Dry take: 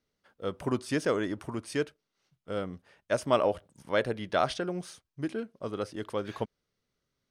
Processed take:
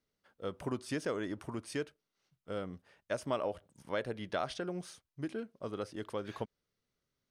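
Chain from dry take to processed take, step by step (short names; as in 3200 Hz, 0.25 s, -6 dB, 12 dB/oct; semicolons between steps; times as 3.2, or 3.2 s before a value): compressor 2:1, threshold -30 dBFS, peak gain reduction 7 dB; gain -4 dB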